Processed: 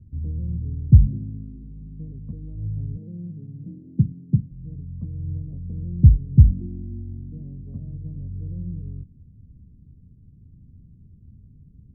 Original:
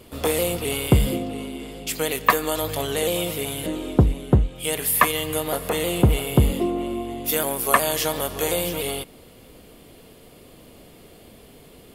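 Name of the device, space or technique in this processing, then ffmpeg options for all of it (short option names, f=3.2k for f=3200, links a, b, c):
the neighbour's flat through the wall: -filter_complex "[0:a]lowpass=f=180:w=0.5412,lowpass=f=180:w=1.3066,equalizer=f=88:t=o:w=0.99:g=8,asettb=1/sr,asplit=3[a][b][c];[a]atrim=end=2.974[d];[b]atrim=start=2.97:end=4.51,asetpts=PTS-STARTPTS,afade=t=in:d=0.004:c=qsin,afade=t=out:st=1.536:d=0.004:c=qsin,highpass=f=140:w=0.5412,highpass=f=140:w=1.3066[e];[c]atrim=start=4.506[f];[d][e]acrossfade=d=0.004:c1=hsin:c2=qsin[g];[g][f]acrossfade=d=0.004:c1=qsin:c2=hsin,volume=2dB"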